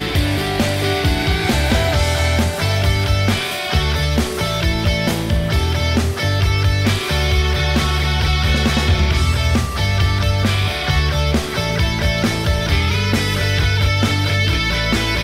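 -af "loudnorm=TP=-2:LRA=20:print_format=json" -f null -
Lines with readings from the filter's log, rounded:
"input_i" : "-17.2",
"input_tp" : "-6.1",
"input_lra" : "0.8",
"input_thresh" : "-27.2",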